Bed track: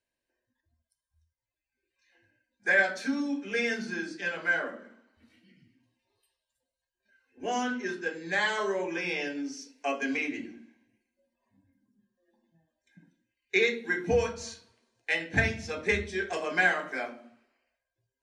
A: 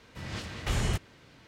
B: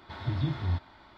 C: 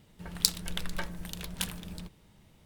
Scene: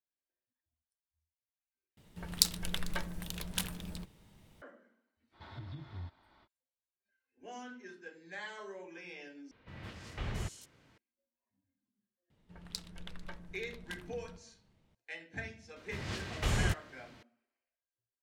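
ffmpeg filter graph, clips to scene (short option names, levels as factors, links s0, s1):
-filter_complex "[3:a]asplit=2[s0][s1];[1:a]asplit=2[s2][s3];[0:a]volume=0.15[s4];[2:a]alimiter=level_in=1.33:limit=0.0631:level=0:latency=1:release=418,volume=0.75[s5];[s2]acrossover=split=4000[s6][s7];[s7]adelay=170[s8];[s6][s8]amix=inputs=2:normalize=0[s9];[s1]aemphasis=mode=reproduction:type=50fm[s10];[s4]asplit=3[s11][s12][s13];[s11]atrim=end=1.974[s14];[s0]atrim=end=2.65,asetpts=PTS-STARTPTS,volume=0.841[s15];[s12]atrim=start=4.616:end=9.514[s16];[s9]atrim=end=1.47,asetpts=PTS-STARTPTS,volume=0.355[s17];[s13]atrim=start=10.976[s18];[s5]atrim=end=1.17,asetpts=PTS-STARTPTS,volume=0.335,afade=t=in:d=0.05,afade=t=out:st=1.12:d=0.05,adelay=5310[s19];[s10]atrim=end=2.65,asetpts=PTS-STARTPTS,volume=0.282,afade=t=in:d=0.004:c=hsin,afade=t=out:st=2.646:d=0.004:c=hsin,adelay=12300[s20];[s3]atrim=end=1.47,asetpts=PTS-STARTPTS,volume=0.794,afade=t=in:d=0.004:c=hsin,afade=t=out:st=1.466:d=0.004:c=hsin,adelay=15760[s21];[s14][s15]acrossfade=d=0.004:c1=hsin:c2=hsin[s22];[s22][s16]acrossfade=d=0.004:c1=hsin:c2=hsin[s23];[s23][s17]acrossfade=d=0.004:c1=hsin:c2=hsin[s24];[s24][s18]acrossfade=d=0.004:c1=hsin:c2=hsin[s25];[s25][s19][s20][s21]amix=inputs=4:normalize=0"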